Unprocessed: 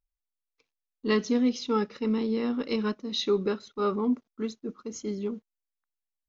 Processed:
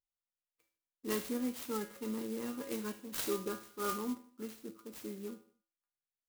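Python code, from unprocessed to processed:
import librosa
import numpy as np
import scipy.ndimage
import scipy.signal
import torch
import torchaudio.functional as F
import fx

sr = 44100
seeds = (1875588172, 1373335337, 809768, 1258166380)

p1 = fx.low_shelf(x, sr, hz=66.0, db=-10.5)
p2 = fx.comb_fb(p1, sr, f0_hz=110.0, decay_s=0.49, harmonics='odd', damping=0.0, mix_pct=90)
p3 = p2 + fx.echo_feedback(p2, sr, ms=77, feedback_pct=46, wet_db=-20, dry=0)
p4 = fx.clock_jitter(p3, sr, seeds[0], jitter_ms=0.073)
y = F.gain(torch.from_numpy(p4), 6.5).numpy()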